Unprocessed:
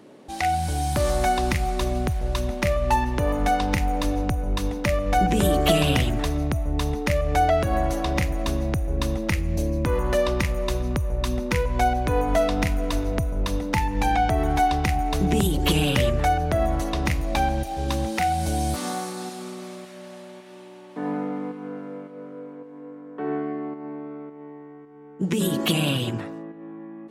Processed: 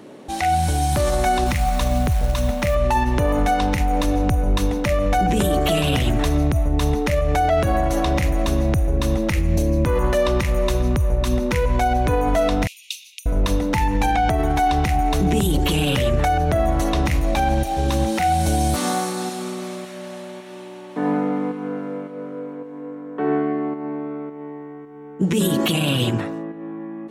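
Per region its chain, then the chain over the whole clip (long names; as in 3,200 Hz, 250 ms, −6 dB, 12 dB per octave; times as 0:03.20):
0:01.46–0:02.75: notch filter 370 Hz, Q 9.6 + log-companded quantiser 6 bits
0:12.67–0:13.26: Butterworth high-pass 2,500 Hz 72 dB per octave + high-shelf EQ 7,200 Hz −5.5 dB
whole clip: notch filter 4,800 Hz, Q 16; brickwall limiter −17.5 dBFS; level +7 dB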